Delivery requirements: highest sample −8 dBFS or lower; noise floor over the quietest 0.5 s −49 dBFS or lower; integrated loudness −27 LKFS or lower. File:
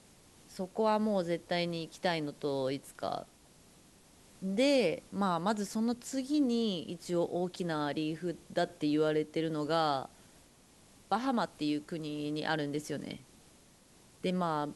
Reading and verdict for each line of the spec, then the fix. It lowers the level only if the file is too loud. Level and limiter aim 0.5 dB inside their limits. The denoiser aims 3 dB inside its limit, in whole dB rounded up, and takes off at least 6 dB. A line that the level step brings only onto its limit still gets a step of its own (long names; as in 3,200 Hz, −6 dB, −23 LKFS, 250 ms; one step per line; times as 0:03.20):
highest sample −16.5 dBFS: in spec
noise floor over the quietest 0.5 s −61 dBFS: in spec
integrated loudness −33.5 LKFS: in spec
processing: no processing needed